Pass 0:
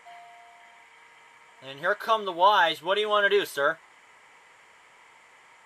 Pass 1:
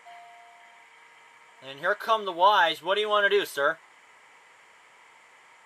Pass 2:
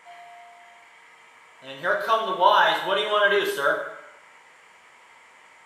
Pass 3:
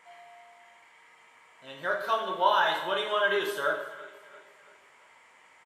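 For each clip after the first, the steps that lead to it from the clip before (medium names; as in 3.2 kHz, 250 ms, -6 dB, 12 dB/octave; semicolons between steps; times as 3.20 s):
bass shelf 120 Hz -7 dB
plate-style reverb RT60 0.85 s, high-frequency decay 0.75×, DRR 0 dB
feedback delay 338 ms, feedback 46%, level -19 dB; trim -6 dB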